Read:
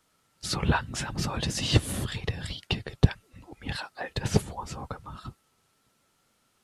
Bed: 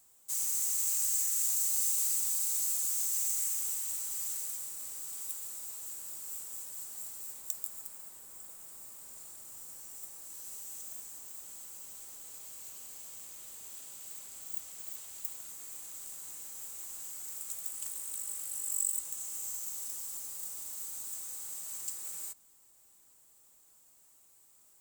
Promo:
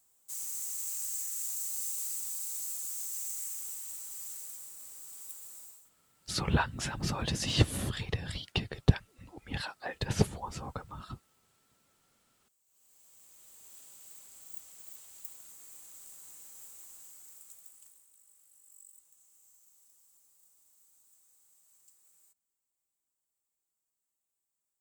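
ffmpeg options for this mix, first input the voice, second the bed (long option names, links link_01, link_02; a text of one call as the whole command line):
ffmpeg -i stem1.wav -i stem2.wav -filter_complex "[0:a]adelay=5850,volume=-3dB[link_01];[1:a]volume=17dB,afade=type=out:start_time=5.6:duration=0.3:silence=0.0707946,afade=type=in:start_time=12.66:duration=1.11:silence=0.0707946,afade=type=out:start_time=16.62:duration=1.46:silence=0.125893[link_02];[link_01][link_02]amix=inputs=2:normalize=0" out.wav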